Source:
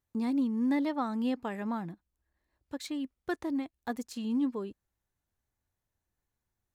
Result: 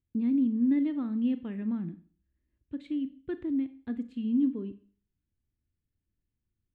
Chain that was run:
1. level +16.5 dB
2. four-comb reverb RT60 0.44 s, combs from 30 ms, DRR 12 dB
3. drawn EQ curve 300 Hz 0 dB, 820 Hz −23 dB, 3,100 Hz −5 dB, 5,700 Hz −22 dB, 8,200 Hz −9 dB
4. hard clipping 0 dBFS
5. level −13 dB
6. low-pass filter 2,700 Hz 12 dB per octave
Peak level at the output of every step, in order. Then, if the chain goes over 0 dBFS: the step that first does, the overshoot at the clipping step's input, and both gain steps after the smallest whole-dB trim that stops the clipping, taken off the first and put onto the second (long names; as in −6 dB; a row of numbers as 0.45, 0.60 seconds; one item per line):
−4.5, −4.0, −4.5, −4.5, −17.5, −17.5 dBFS
no step passes full scale